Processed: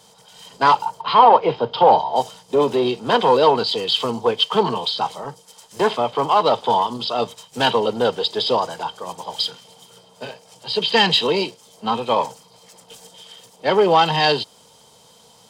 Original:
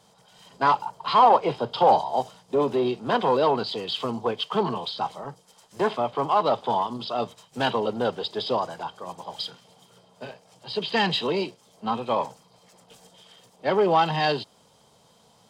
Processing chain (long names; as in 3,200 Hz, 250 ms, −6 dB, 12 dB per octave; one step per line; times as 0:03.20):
high-shelf EQ 2,600 Hz +8.5 dB
hollow resonant body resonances 470/910/3,100 Hz, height 6 dB
0:01.01–0:02.16: high-frequency loss of the air 210 metres
level +3.5 dB